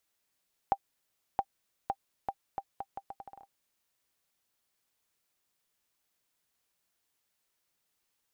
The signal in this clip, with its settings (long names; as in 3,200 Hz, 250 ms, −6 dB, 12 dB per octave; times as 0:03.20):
bouncing ball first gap 0.67 s, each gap 0.76, 790 Hz, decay 57 ms −14.5 dBFS